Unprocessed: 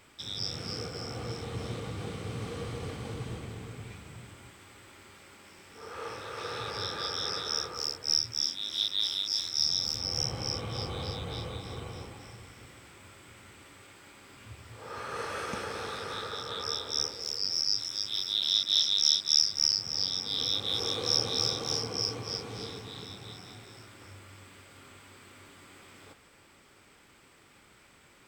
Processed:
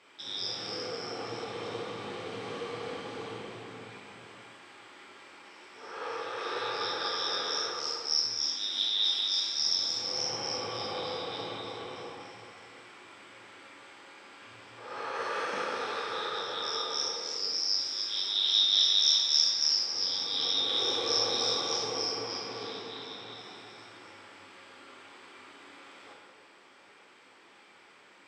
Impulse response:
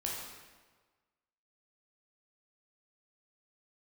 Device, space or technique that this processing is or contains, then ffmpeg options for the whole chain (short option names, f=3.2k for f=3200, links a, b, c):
supermarket ceiling speaker: -filter_complex "[0:a]asettb=1/sr,asplit=3[a][b][c];[a]atrim=end=22.114[d];[b]atrim=start=22.11:end=23.38,asetpts=PTS-STARTPTS,afade=t=in:d=0.004:c=qsin,afade=t=out:st=1.266:d=0.004:c=qsin,lowpass=7k[e];[c]atrim=start=23.376[f];[d][e]acrossfade=d=0.004:c1=hsin:c2=qsin[g];[g][f]acrossfade=d=0.004:c1=qsin:c2=hsin,highpass=330,lowpass=5.2k[h];[1:a]atrim=start_sample=2205[i];[h][i]afir=irnorm=-1:irlink=0,volume=1dB"